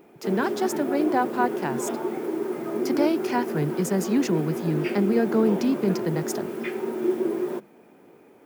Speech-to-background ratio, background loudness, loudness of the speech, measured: 3.0 dB, -29.0 LUFS, -26.0 LUFS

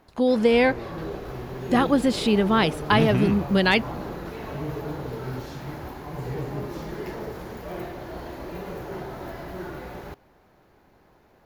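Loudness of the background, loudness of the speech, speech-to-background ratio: -34.5 LUFS, -21.0 LUFS, 13.5 dB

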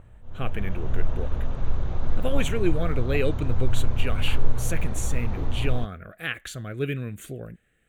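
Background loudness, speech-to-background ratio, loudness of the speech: -31.5 LUFS, 0.0 dB, -31.5 LUFS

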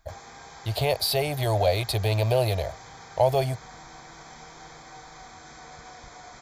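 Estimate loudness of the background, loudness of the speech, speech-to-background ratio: -45.0 LUFS, -25.0 LUFS, 20.0 dB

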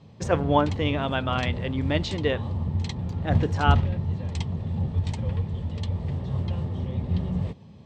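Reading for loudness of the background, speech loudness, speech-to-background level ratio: -29.0 LUFS, -27.0 LUFS, 2.0 dB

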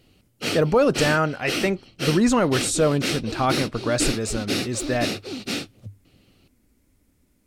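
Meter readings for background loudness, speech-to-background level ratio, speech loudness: -28.5 LUFS, 5.5 dB, -23.0 LUFS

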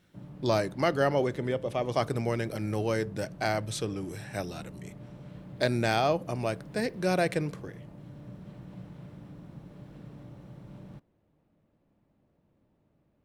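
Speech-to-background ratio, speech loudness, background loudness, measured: 16.5 dB, -30.0 LUFS, -46.5 LUFS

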